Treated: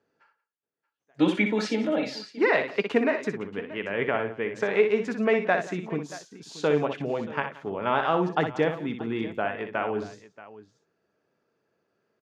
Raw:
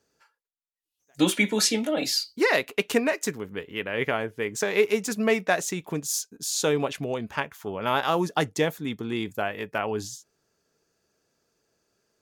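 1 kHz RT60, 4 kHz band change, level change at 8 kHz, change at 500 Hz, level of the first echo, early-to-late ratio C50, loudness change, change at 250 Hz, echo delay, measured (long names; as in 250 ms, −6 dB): no reverb audible, −9.0 dB, below −15 dB, +1.0 dB, −7.5 dB, no reverb audible, −0.5 dB, +0.5 dB, 61 ms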